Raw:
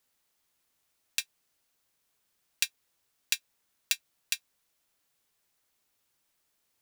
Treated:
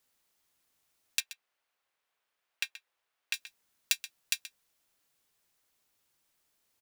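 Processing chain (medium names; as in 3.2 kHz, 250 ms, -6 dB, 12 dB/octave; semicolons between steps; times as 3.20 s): 1.20–3.34 s: three-band isolator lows -16 dB, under 450 Hz, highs -13 dB, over 3.3 kHz; echo from a far wall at 22 m, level -14 dB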